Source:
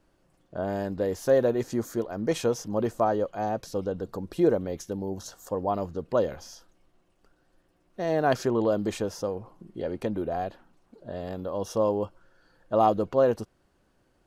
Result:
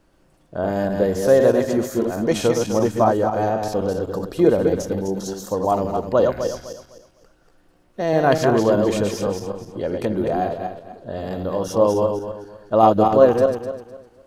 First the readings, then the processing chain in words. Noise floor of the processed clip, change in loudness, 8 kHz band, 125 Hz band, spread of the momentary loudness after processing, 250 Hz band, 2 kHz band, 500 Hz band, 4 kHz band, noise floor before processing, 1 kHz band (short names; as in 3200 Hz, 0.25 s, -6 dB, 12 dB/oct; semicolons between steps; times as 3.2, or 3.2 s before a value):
-58 dBFS, +8.0 dB, +8.5 dB, +8.5 dB, 15 LU, +8.5 dB, +8.5 dB, +8.5 dB, +8.5 dB, -68 dBFS, +8.5 dB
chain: regenerating reverse delay 0.127 s, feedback 52%, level -4 dB; gain +6.5 dB